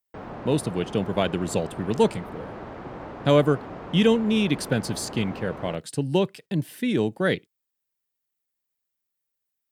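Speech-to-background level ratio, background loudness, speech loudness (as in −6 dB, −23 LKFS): 13.5 dB, −38.5 LKFS, −25.0 LKFS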